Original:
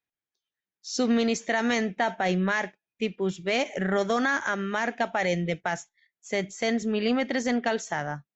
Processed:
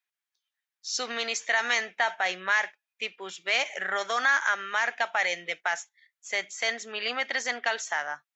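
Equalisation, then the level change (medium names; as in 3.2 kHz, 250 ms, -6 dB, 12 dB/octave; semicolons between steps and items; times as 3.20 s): high-pass 1.1 kHz 12 dB/octave; treble shelf 4.9 kHz -4 dB; +5.0 dB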